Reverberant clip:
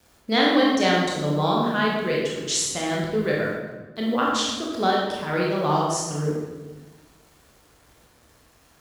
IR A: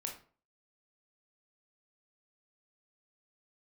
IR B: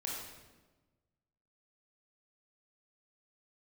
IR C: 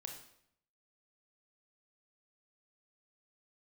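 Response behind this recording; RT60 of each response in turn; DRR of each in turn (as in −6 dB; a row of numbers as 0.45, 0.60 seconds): B; 0.45, 1.2, 0.70 seconds; 1.0, −4.0, 2.5 decibels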